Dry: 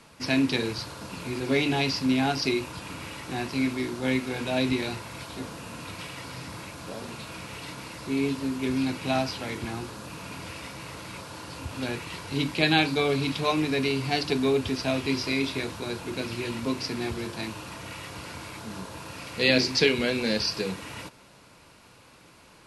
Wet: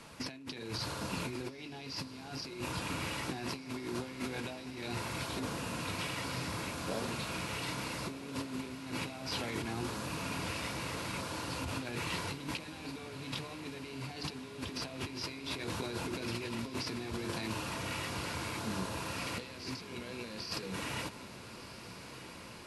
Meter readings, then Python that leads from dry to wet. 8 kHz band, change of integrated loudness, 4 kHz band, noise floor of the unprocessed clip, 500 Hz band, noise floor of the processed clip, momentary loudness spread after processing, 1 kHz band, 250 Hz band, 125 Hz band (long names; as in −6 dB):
−3.5 dB, −11.0 dB, −9.5 dB, −54 dBFS, −13.0 dB, −49 dBFS, 6 LU, −7.0 dB, −12.0 dB, −7.5 dB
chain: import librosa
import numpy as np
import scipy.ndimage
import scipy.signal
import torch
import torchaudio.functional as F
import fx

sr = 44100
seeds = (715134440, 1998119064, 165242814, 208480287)

p1 = fx.over_compress(x, sr, threshold_db=-36.0, ratio=-1.0)
p2 = p1 + fx.echo_diffused(p1, sr, ms=1323, feedback_pct=71, wet_db=-13.0, dry=0)
y = F.gain(torch.from_numpy(p2), -5.0).numpy()